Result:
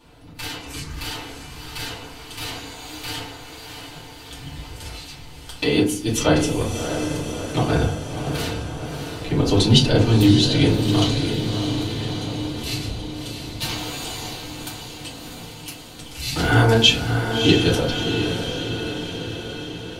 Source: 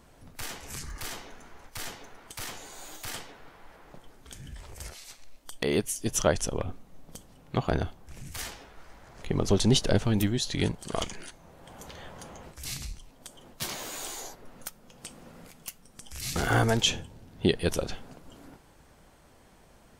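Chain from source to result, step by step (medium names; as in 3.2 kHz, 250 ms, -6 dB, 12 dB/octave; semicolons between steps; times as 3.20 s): high-order bell 3.4 kHz +9 dB 1.1 oct; echo that smears into a reverb 649 ms, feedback 64%, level -6.5 dB; FDN reverb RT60 0.51 s, low-frequency decay 1.4×, high-frequency decay 0.4×, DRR -8 dB; trim -3 dB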